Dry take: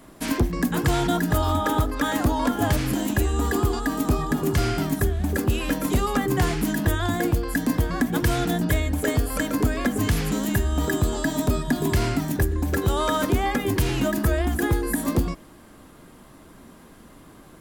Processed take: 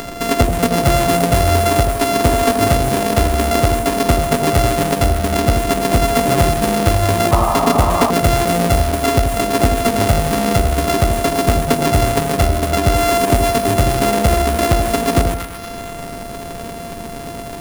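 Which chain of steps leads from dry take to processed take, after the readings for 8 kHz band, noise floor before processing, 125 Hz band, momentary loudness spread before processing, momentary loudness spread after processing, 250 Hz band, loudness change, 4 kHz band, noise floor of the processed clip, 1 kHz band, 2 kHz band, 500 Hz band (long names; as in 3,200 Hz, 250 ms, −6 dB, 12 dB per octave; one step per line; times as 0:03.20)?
+10.5 dB, −49 dBFS, +7.0 dB, 2 LU, 14 LU, +5.0 dB, +8.5 dB, +10.0 dB, −29 dBFS, +12.0 dB, +6.0 dB, +12.0 dB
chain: samples sorted by size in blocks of 64 samples
upward compression, threshold −25 dBFS
echo with a time of its own for lows and highs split 980 Hz, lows 81 ms, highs 235 ms, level −7.5 dB
sound drawn into the spectrogram noise, 0:07.31–0:08.11, 560–1,300 Hz −26 dBFS
level +7 dB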